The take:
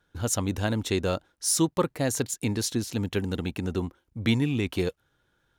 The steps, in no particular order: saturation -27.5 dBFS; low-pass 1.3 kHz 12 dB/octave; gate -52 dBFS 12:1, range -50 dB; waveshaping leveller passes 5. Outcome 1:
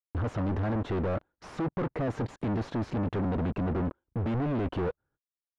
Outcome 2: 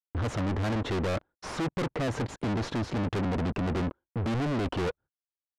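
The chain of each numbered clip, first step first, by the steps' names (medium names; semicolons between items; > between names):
waveshaping leveller > gate > saturation > low-pass; waveshaping leveller > low-pass > saturation > gate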